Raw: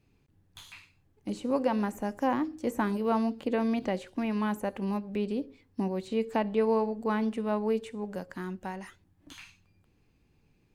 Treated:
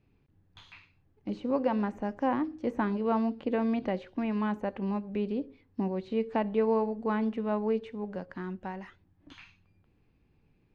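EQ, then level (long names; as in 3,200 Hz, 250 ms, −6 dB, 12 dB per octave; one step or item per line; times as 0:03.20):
high-frequency loss of the air 210 metres
notch filter 7,500 Hz, Q 14
0.0 dB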